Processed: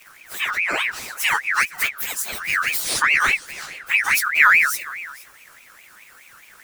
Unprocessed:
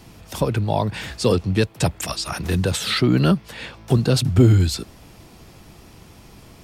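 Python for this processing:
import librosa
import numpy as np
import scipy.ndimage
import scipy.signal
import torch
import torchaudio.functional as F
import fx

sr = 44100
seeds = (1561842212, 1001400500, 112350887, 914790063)

y = fx.partial_stretch(x, sr, pct=120)
y = fx.high_shelf(y, sr, hz=7300.0, db=11.0)
y = y + 10.0 ** (-19.0 / 20.0) * np.pad(y, (int(467 * sr / 1000.0), 0))[:len(y)]
y = fx.ring_lfo(y, sr, carrier_hz=1900.0, swing_pct=30, hz=4.8)
y = F.gain(torch.from_numpy(y), 3.0).numpy()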